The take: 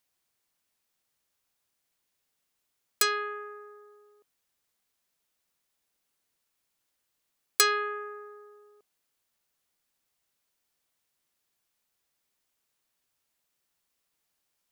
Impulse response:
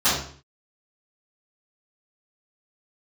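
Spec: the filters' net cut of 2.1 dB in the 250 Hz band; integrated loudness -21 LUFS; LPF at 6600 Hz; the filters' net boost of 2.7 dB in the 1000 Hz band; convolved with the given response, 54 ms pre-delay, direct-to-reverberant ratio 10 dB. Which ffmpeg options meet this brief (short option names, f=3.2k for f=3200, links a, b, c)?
-filter_complex "[0:a]lowpass=6.6k,equalizer=f=250:t=o:g=-7,equalizer=f=1k:t=o:g=4,asplit=2[a][b];[1:a]atrim=start_sample=2205,adelay=54[c];[b][c]afir=irnorm=-1:irlink=0,volume=-28dB[d];[a][d]amix=inputs=2:normalize=0,volume=7.5dB"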